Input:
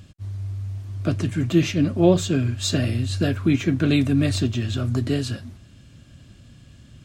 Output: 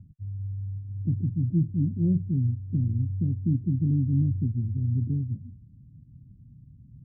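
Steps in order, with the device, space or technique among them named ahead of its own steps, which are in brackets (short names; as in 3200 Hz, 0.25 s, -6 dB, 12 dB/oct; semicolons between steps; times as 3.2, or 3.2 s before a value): the neighbour's flat through the wall (LPF 240 Hz 24 dB/oct; bell 140 Hz +6 dB 0.77 oct); gain -5.5 dB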